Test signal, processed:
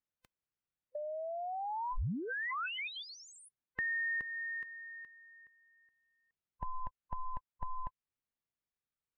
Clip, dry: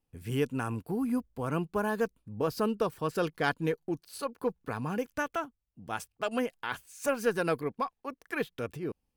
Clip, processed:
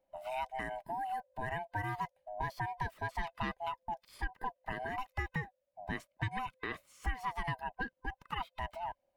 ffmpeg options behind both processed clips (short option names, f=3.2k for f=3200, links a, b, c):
-filter_complex "[0:a]afftfilt=real='real(if(lt(b,1008),b+24*(1-2*mod(floor(b/24),2)),b),0)':imag='imag(if(lt(b,1008),b+24*(1-2*mod(floor(b/24),2)),b),0)':win_size=2048:overlap=0.75,acrossover=split=1200|2700[a][b][c];[a]acompressor=threshold=-44dB:ratio=4[d];[b]acompressor=threshold=-43dB:ratio=4[e];[c]acompressor=threshold=-48dB:ratio=4[f];[d][e][f]amix=inputs=3:normalize=0,bass=f=250:g=8,treble=f=4k:g=-13,volume=1.5dB"